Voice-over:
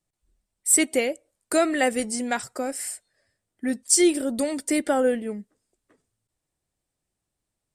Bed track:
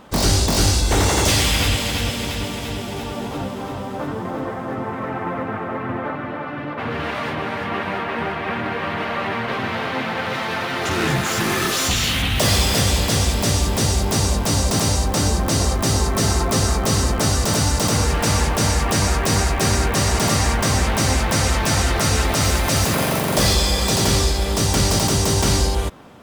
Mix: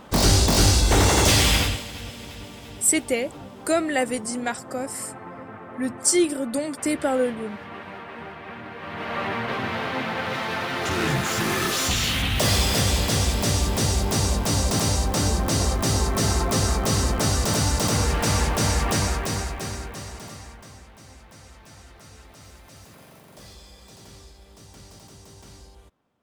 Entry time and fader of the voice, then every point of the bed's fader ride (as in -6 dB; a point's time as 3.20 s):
2.15 s, -1.0 dB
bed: 1.56 s -0.5 dB
1.87 s -13.5 dB
8.75 s -13.5 dB
9.18 s -3.5 dB
18.93 s -3.5 dB
20.89 s -29 dB